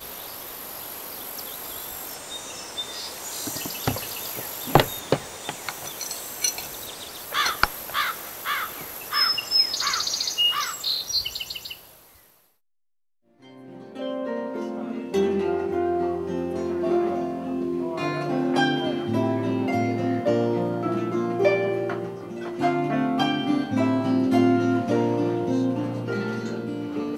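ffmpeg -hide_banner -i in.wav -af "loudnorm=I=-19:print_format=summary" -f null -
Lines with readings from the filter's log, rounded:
Input Integrated:    -25.3 LUFS
Input True Peak:      -1.3 dBTP
Input LRA:             8.3 LU
Input Threshold:     -35.5 LUFS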